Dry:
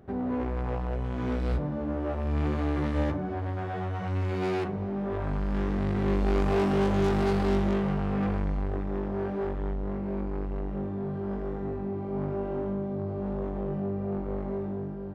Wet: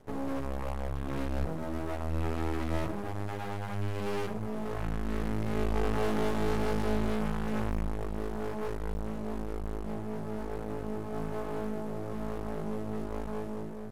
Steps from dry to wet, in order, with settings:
variable-slope delta modulation 64 kbit/s
wrong playback speed 44.1 kHz file played as 48 kHz
half-wave rectification

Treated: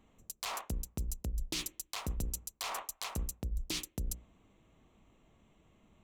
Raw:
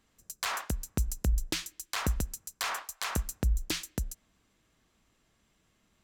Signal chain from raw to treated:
adaptive Wiener filter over 9 samples
mains-hum notches 60/120/180/240/300/360/420/480/540 Hz
reversed playback
downward compressor 6 to 1, threshold −42 dBFS, peak gain reduction 17.5 dB
reversed playback
parametric band 1,600 Hz −11.5 dB 0.67 octaves
level +8 dB

